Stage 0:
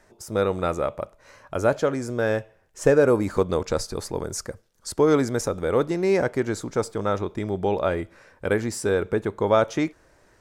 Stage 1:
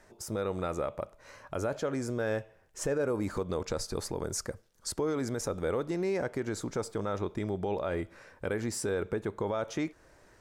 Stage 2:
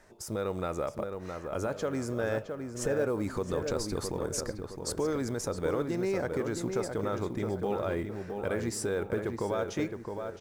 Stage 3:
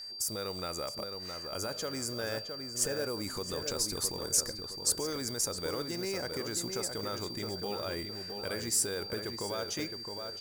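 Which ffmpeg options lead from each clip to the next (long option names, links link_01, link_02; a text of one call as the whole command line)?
ffmpeg -i in.wav -filter_complex "[0:a]asplit=2[link_01][link_02];[link_02]acompressor=threshold=-31dB:ratio=6,volume=1dB[link_03];[link_01][link_03]amix=inputs=2:normalize=0,alimiter=limit=-14.5dB:level=0:latency=1:release=65,volume=-8dB" out.wav
ffmpeg -i in.wav -filter_complex "[0:a]asplit=2[link_01][link_02];[link_02]adelay=665,lowpass=frequency=2200:poles=1,volume=-5.5dB,asplit=2[link_03][link_04];[link_04]adelay=665,lowpass=frequency=2200:poles=1,volume=0.42,asplit=2[link_05][link_06];[link_06]adelay=665,lowpass=frequency=2200:poles=1,volume=0.42,asplit=2[link_07][link_08];[link_08]adelay=665,lowpass=frequency=2200:poles=1,volume=0.42,asplit=2[link_09][link_10];[link_10]adelay=665,lowpass=frequency=2200:poles=1,volume=0.42[link_11];[link_01][link_03][link_05][link_07][link_09][link_11]amix=inputs=6:normalize=0,acrusher=bits=9:mode=log:mix=0:aa=0.000001" out.wav
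ffmpeg -i in.wav -af "crystalizer=i=5.5:c=0,aeval=exprs='val(0)+0.02*sin(2*PI*4700*n/s)':channel_layout=same,volume=-7dB" out.wav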